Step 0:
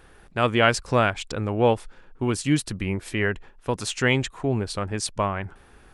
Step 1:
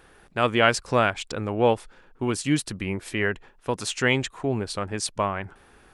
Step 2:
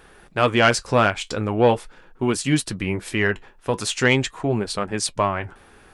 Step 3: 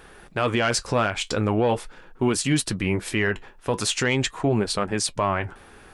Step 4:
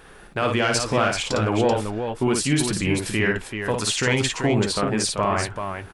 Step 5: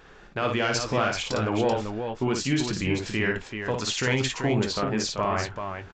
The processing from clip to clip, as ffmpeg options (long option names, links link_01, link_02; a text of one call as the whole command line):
ffmpeg -i in.wav -af "lowshelf=frequency=120:gain=-7.5" out.wav
ffmpeg -i in.wav -af "flanger=delay=4.5:depth=6:regen=-58:speed=0.42:shape=triangular,asoftclip=type=tanh:threshold=-13dB,volume=8.5dB" out.wav
ffmpeg -i in.wav -af "alimiter=limit=-15dB:level=0:latency=1:release=51,volume=2dB" out.wav
ffmpeg -i in.wav -af "aecho=1:1:55|385:0.596|0.473" out.wav
ffmpeg -i in.wav -filter_complex "[0:a]asplit=2[link_01][link_02];[link_02]adelay=23,volume=-13.5dB[link_03];[link_01][link_03]amix=inputs=2:normalize=0,aresample=16000,aresample=44100,volume=-4dB" out.wav